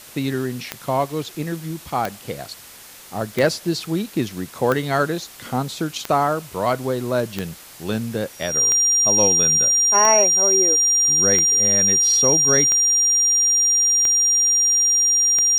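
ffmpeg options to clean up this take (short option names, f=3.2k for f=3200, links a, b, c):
-af "adeclick=t=4,bandreject=f=5.7k:w=30,afwtdn=0.0089"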